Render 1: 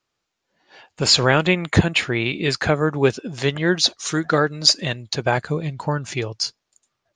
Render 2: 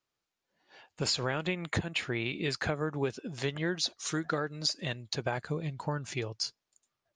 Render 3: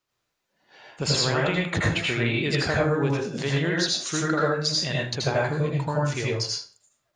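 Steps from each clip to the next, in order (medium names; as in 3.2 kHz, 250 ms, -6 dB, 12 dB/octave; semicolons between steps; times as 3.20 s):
compression 10:1, threshold -18 dBFS, peak gain reduction 11 dB; trim -9 dB
reverberation RT60 0.45 s, pre-delay 73 ms, DRR -4 dB; trim +3.5 dB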